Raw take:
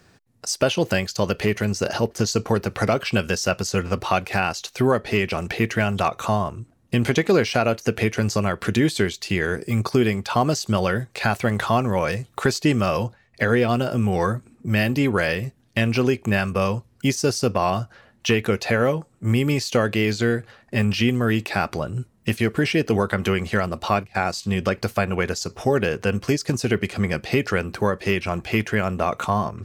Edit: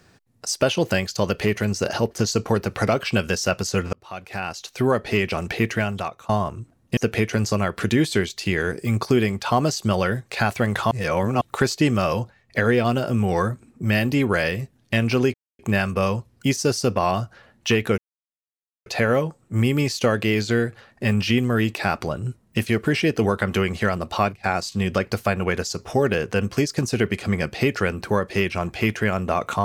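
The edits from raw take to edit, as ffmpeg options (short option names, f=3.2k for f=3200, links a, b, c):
-filter_complex "[0:a]asplit=8[a][b][c][d][e][f][g][h];[a]atrim=end=3.93,asetpts=PTS-STARTPTS,afade=t=out:st=3.926:d=0.004:c=hsin[i];[b]atrim=start=3.93:end=6.29,asetpts=PTS-STARTPTS,afade=t=in:d=1.07,afade=t=out:st=1.76:d=0.6:silence=0.0749894[j];[c]atrim=start=6.29:end=6.972,asetpts=PTS-STARTPTS,afade=t=in:d=0.004:c=hsin:silence=0.0749894[k];[d]atrim=start=7.808:end=11.752[l];[e]atrim=start=11.748:end=12.252,asetpts=PTS-STARTPTS,areverse[m];[f]atrim=start=12.248:end=16.18,asetpts=PTS-STARTPTS,afade=t=out:st=3.928:d=0.004:c=hsin,apad=pad_dur=0.25[n];[g]atrim=start=16.18:end=18.57,asetpts=PTS-STARTPTS,afade=t=in:d=0.004:c=hsin,afade=t=out:st=2.386:d=0.004:c=hsin,apad=pad_dur=0.88[o];[h]atrim=start=18.57,asetpts=PTS-STARTPTS,afade=t=in:d=0.004:c=hsin[p];[i][j][k]concat=n=3:v=0:a=1[q];[q][l]acrossfade=d=0.004:c1=hsin:c2=hsin[r];[r][m]acrossfade=d=0.004:c1=hsin:c2=hsin[s];[n][o][p]concat=n=3:v=0:a=1[t];[s][t]acrossfade=d=0.004:c1=hsin:c2=hsin"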